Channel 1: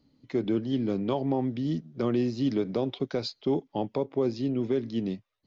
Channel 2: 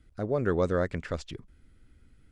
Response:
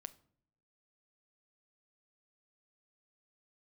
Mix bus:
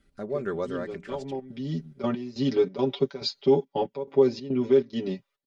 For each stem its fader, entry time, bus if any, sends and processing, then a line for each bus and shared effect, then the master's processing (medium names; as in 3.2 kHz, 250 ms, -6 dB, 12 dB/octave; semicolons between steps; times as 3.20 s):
1.30 s -15.5 dB -> 1.92 s -4 dB, 0.00 s, no send, comb 7.2 ms, depth 93%; trance gate "xx.x..xxx.xxx.xx" 140 bpm -12 dB
-0.5 dB, 0.00 s, no send, hum notches 60/120/180 Hz; auto duck -12 dB, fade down 0.90 s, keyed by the first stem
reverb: none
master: bass shelf 110 Hz -9 dB; comb 5.1 ms, depth 64%; level rider gain up to 4.5 dB